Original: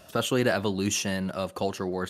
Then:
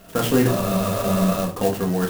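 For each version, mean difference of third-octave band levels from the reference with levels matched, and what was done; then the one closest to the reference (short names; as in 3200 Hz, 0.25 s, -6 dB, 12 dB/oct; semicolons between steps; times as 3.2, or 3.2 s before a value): 8.5 dB: spectral repair 0.49–1.35, 200–10000 Hz after; in parallel at -11 dB: sample-and-hold 39×; on the sum: shoebox room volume 210 m³, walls furnished, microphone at 1.7 m; clock jitter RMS 0.053 ms; gain +2 dB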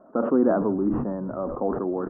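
14.5 dB: steep low-pass 1300 Hz 48 dB/oct; resonant low shelf 170 Hz -13.5 dB, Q 3; on a send: frequency-shifting echo 0.15 s, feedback 50%, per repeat -67 Hz, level -18.5 dB; on the sum: sustainer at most 42 dB/s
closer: first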